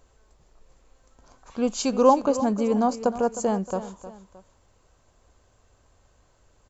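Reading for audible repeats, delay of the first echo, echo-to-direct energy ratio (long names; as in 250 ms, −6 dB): 2, 310 ms, −13.0 dB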